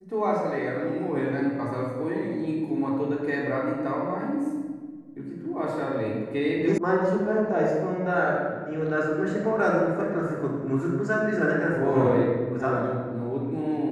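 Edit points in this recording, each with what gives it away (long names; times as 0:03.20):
0:06.78: cut off before it has died away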